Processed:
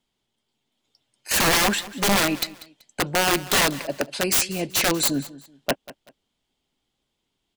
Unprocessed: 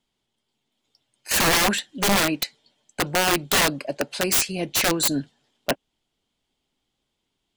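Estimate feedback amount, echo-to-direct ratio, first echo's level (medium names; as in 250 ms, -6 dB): 28%, -17.5 dB, -18.0 dB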